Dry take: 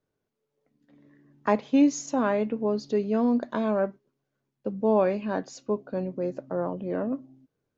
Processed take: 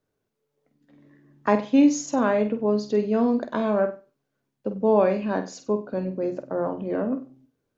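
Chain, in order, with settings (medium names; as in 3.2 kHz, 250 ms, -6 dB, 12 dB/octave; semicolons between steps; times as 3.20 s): hum notches 60/120/180 Hz; on a send: flutter echo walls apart 8.2 m, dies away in 0.31 s; on the sum: trim +2.5 dB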